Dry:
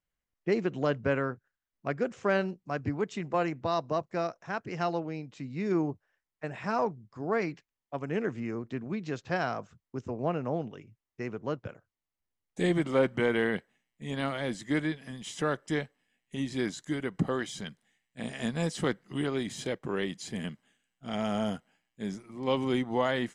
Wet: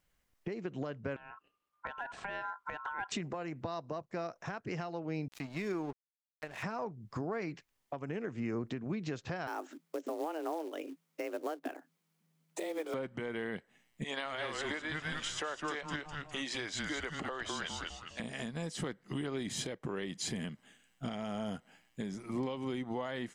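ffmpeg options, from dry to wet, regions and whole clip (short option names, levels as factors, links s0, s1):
-filter_complex "[0:a]asettb=1/sr,asplit=3[s0][s1][s2];[s0]atrim=end=1.164[s3];[s1]atrim=start=1.16:end=3.12,asetpts=PTS-STARTPTS,afade=t=in:d=0.004:c=qsin,afade=t=out:st=1.956:d=0.004:c=qsin,highshelf=f=2300:g=-9.5,acompressor=threshold=0.00891:ratio=20:attack=3.2:release=140:knee=1:detection=peak,aeval=exprs='val(0)*sin(2*PI*1200*n/s)':c=same[s4];[s2]atrim=start=3.116[s5];[s3][s4]acrossfade=d=0.004:c1=hsin:c2=qsin[s6];[s6][s5]acrossfade=d=0.004:c1=qsin:c2=hsin,asettb=1/sr,asplit=3[s7][s8][s9];[s7]atrim=end=5.284[s10];[s8]atrim=start=5.28:end=6.63,asetpts=PTS-STARTPTS,afade=t=in:d=0.004:c=qsin,afade=t=out:st=1.346:d=0.004:c=qsin,lowshelf=f=300:g=-11.5,aeval=exprs='sgn(val(0))*max(abs(val(0))-0.00282,0)':c=same[s11];[s9]atrim=start=6.626[s12];[s10][s11]acrossfade=d=0.004:c1=hsin:c2=qsin[s13];[s13][s12]acrossfade=d=0.004:c1=qsin:c2=hsin,asettb=1/sr,asplit=3[s14][s15][s16];[s14]atrim=end=9.474[s17];[s15]atrim=start=9.47:end=12.94,asetpts=PTS-STARTPTS,afade=t=in:d=0.004:c=qsin,afade=t=out:st=3.466:d=0.004:c=qsin,acrusher=bits=5:mode=log:mix=0:aa=0.000001,afreqshift=160[s18];[s16]atrim=start=12.936[s19];[s17][s18]acrossfade=d=0.004:c1=hsin:c2=qsin[s20];[s20][s19]acrossfade=d=0.004:c1=qsin:c2=hsin,asettb=1/sr,asplit=3[s21][s22][s23];[s21]atrim=end=14.044[s24];[s22]atrim=start=14.04:end=18.2,asetpts=PTS-STARTPTS,afade=t=in:d=0.004:c=qsin,afade=t=out:st=4.156:d=0.004:c=qsin,highpass=620,lowpass=7200,asplit=5[s25][s26][s27][s28][s29];[s26]adelay=204,afreqshift=-150,volume=0.562[s30];[s27]adelay=408,afreqshift=-300,volume=0.202[s31];[s28]adelay=612,afreqshift=-450,volume=0.0733[s32];[s29]adelay=816,afreqshift=-600,volume=0.0263[s33];[s25][s30][s31][s32][s33]amix=inputs=5:normalize=0,atrim=end_sample=183456[s34];[s23]atrim=start=18.196[s35];[s24][s34]acrossfade=d=0.004:c1=hsin:c2=qsin[s36];[s36][s35]acrossfade=d=0.004:c1=qsin:c2=hsin,acompressor=threshold=0.01:ratio=16,alimiter=level_in=5.01:limit=0.0631:level=0:latency=1:release=452,volume=0.2,volume=3.55"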